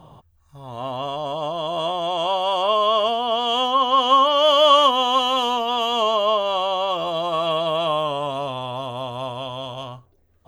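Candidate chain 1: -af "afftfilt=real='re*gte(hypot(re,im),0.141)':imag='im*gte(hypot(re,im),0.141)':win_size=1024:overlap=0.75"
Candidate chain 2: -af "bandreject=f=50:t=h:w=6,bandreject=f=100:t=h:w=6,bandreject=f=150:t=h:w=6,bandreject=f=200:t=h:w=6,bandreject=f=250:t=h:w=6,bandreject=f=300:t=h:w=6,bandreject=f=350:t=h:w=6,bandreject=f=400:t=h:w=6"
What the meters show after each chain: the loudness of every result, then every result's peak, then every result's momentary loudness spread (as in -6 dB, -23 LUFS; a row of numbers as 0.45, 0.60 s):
-20.0, -20.0 LUFS; -3.0, -3.0 dBFS; 17, 15 LU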